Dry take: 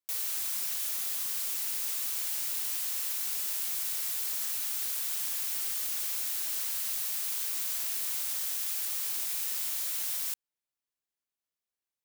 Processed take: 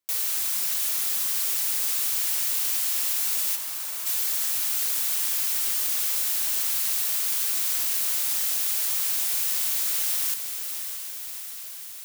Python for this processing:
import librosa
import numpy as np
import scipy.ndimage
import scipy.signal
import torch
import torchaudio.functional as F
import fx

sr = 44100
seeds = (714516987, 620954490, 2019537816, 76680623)

p1 = fx.bandpass_q(x, sr, hz=980.0, q=1.5, at=(3.55, 4.05), fade=0.02)
p2 = p1 + fx.echo_diffused(p1, sr, ms=611, feedback_pct=66, wet_db=-8.0, dry=0)
y = p2 * librosa.db_to_amplitude(6.5)